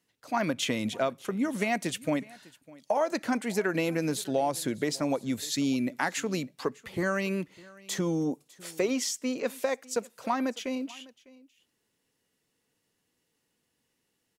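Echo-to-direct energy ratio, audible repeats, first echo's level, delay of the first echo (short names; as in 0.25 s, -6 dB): -22.5 dB, 1, -22.5 dB, 0.602 s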